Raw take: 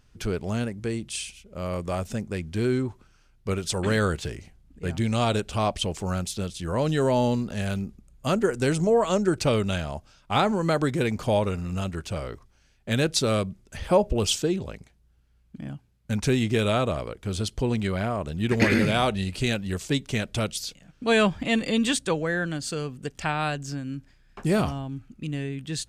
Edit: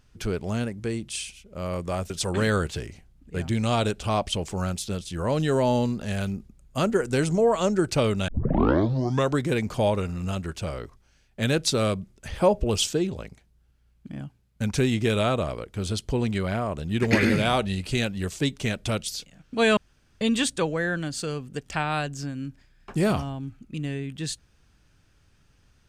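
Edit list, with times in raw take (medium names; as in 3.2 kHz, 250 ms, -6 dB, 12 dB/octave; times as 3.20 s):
2.10–3.59 s: delete
9.77 s: tape start 1.10 s
21.26–21.70 s: room tone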